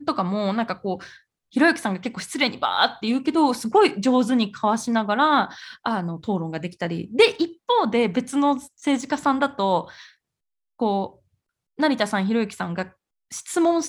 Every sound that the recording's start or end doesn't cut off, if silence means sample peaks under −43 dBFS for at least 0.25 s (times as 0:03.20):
0:01.53–0:10.09
0:10.80–0:11.11
0:11.79–0:12.89